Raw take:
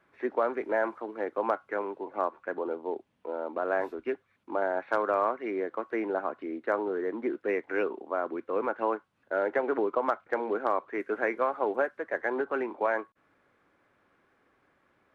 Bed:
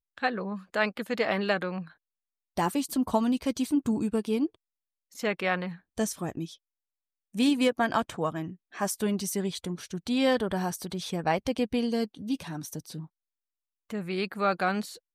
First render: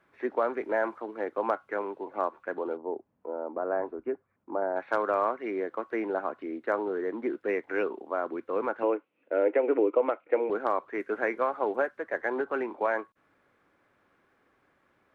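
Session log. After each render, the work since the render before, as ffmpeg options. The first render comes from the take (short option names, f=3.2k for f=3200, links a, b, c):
-filter_complex "[0:a]asettb=1/sr,asplit=3[a][b][c];[a]atrim=end=2.774[d];[b]atrim=start=2.77:end=4.76,asetpts=PTS-STARTPTS,afade=t=in:d=0.004:c=qsin,afade=t=out:st=1.986:d=0.004:c=qsin,lowpass=1.1k[e];[c]atrim=start=4.756[f];[d][e]acrossfade=d=0.004:c1=hsin:c2=qsin[g];[g][f]acrossfade=d=0.004:c1=qsin:c2=hsin,asettb=1/sr,asplit=3[h][i][j];[h]atrim=end=8.834[k];[i]atrim=start=8.83:end=10.5,asetpts=PTS-STARTPTS,afade=t=in:d=0.004:c=qsin,afade=t=out:st=1.666:d=0.004:c=qsin,highpass=290,equalizer=f=300:t=q:w=4:g=9,equalizer=f=490:t=q:w=4:g=8,equalizer=f=800:t=q:w=4:g=-4,equalizer=f=1.1k:t=q:w=4:g=-6,equalizer=f=1.6k:t=q:w=4:g=-8,equalizer=f=2.5k:t=q:w=4:g=9,lowpass=f=3k:w=0.5412,lowpass=f=3k:w=1.3066[l];[j]atrim=start=10.496[m];[k][l]acrossfade=d=0.004:c1=hsin:c2=qsin[n];[n][m]acrossfade=d=0.004:c1=qsin:c2=hsin"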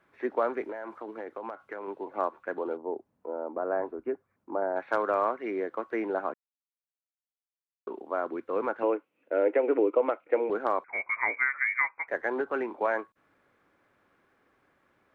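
-filter_complex "[0:a]asettb=1/sr,asplit=3[a][b][c];[a]atrim=end=0.634[d];[b]atrim=start=0.63:end=1.88,asetpts=PTS-STARTPTS,afade=t=in:d=0.004:c=qsin,afade=t=out:st=1.246:d=0.004:c=qsin,acompressor=threshold=-33dB:ratio=10:attack=3.2:release=140:knee=1:detection=peak[e];[c]atrim=start=1.876[f];[d][e]acrossfade=d=0.004:c1=hsin:c2=qsin[g];[g][f]acrossfade=d=0.004:c1=qsin:c2=hsin,asettb=1/sr,asplit=3[h][i][j];[h]atrim=end=10.844[k];[i]atrim=start=10.84:end=12.08,asetpts=PTS-STARTPTS,afade=t=in:d=0.004:c=qsin,afade=t=out:st=1.236:d=0.004:c=qsin,lowpass=f=2.2k:t=q:w=0.5098,lowpass=f=2.2k:t=q:w=0.6013,lowpass=f=2.2k:t=q:w=0.9,lowpass=f=2.2k:t=q:w=2.563,afreqshift=-2600[l];[j]atrim=start=12.076[m];[k][l]acrossfade=d=0.004:c1=hsin:c2=qsin[n];[n][m]acrossfade=d=0.004:c1=qsin:c2=hsin,asplit=3[o][p][q];[o]atrim=end=6.34,asetpts=PTS-STARTPTS,afade=t=out:st=6.336:d=0.004:c=hsin[r];[p]atrim=start=6.34:end=7.87,asetpts=PTS-STARTPTS,volume=0[s];[q]atrim=start=7.87,asetpts=PTS-STARTPTS,afade=t=in:d=0.004:c=hsin[t];[r][s][t]concat=n=3:v=0:a=1"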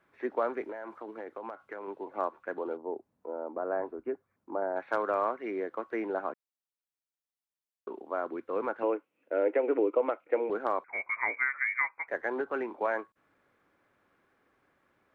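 -af "volume=-2.5dB"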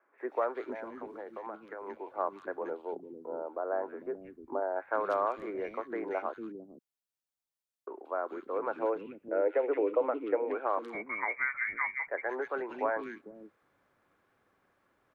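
-filter_complex "[0:a]acrossover=split=310|2100[a][b][c];[c]adelay=180[d];[a]adelay=450[e];[e][b][d]amix=inputs=3:normalize=0"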